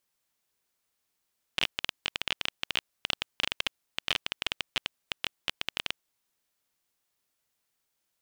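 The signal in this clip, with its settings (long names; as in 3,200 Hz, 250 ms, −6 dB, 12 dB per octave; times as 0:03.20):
Geiger counter clicks 16 per second −10 dBFS 4.51 s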